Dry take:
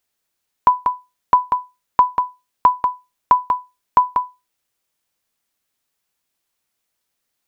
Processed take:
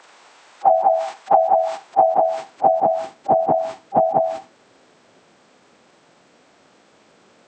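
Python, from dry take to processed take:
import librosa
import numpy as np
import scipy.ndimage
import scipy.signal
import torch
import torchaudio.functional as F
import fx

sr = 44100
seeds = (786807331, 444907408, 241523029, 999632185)

y = fx.partial_stretch(x, sr, pct=82)
y = fx.highpass(y, sr, hz=120.0, slope=6)
y = fx.dynamic_eq(y, sr, hz=190.0, q=0.81, threshold_db=-36.0, ratio=4.0, max_db=6)
y = fx.filter_sweep_bandpass(y, sr, from_hz=770.0, to_hz=320.0, start_s=1.44, end_s=3.27, q=0.94)
y = fx.pitch_keep_formants(y, sr, semitones=-3.0)
y = fx.env_flatten(y, sr, amount_pct=70)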